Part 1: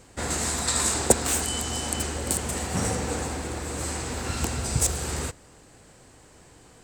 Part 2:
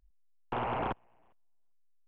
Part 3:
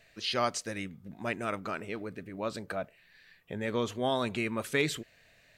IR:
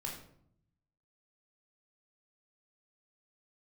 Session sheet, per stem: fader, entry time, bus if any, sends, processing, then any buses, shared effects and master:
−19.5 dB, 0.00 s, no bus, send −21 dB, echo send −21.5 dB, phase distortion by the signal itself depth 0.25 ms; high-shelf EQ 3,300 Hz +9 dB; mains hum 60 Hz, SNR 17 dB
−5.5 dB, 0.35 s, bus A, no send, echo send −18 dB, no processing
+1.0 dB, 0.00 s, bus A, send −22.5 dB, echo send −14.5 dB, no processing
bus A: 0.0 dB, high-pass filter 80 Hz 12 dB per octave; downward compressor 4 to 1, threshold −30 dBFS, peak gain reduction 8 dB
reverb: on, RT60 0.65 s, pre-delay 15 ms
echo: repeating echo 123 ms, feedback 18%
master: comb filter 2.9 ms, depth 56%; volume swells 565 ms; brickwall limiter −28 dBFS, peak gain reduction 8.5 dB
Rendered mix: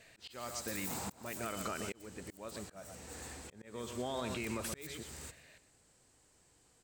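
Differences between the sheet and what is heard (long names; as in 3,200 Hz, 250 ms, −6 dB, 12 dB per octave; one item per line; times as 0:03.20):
stem 1: missing mains hum 60 Hz, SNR 17 dB
stem 2 −5.5 dB → −12.0 dB
master: missing comb filter 2.9 ms, depth 56%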